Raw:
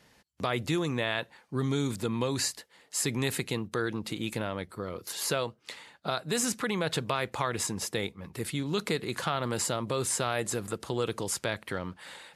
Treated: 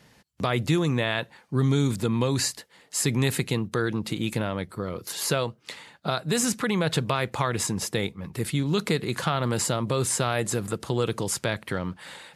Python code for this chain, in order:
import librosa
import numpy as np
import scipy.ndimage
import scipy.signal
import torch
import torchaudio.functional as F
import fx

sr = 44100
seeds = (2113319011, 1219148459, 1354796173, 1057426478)

y = fx.peak_eq(x, sr, hz=140.0, db=5.5, octaves=1.4)
y = y * 10.0 ** (3.5 / 20.0)